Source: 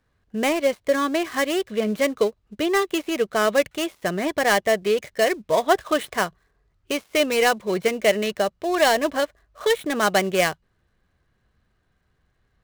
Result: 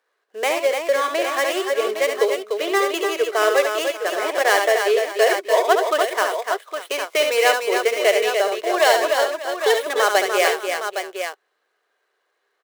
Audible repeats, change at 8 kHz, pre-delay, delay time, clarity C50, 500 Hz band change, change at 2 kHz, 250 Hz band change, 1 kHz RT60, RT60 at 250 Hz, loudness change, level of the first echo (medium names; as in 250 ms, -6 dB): 4, +3.5 dB, no reverb, 70 ms, no reverb, +3.5 dB, +4.0 dB, -7.0 dB, no reverb, no reverb, +2.5 dB, -6.5 dB